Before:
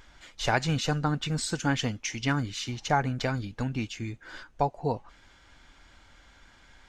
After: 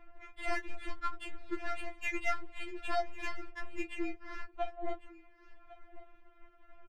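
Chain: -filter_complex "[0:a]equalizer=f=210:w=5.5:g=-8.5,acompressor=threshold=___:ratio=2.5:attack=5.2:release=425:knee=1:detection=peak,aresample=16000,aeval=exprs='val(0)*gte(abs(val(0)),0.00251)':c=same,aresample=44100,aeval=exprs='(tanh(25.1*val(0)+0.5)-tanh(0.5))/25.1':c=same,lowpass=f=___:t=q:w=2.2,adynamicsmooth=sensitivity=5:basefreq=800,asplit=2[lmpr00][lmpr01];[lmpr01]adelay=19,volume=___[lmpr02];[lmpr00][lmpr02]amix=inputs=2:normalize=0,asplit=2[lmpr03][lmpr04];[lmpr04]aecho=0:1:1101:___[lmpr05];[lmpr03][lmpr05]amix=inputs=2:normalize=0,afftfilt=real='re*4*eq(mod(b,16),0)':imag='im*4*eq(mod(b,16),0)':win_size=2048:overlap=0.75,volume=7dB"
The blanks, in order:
-35dB, 2500, -8.5dB, 0.119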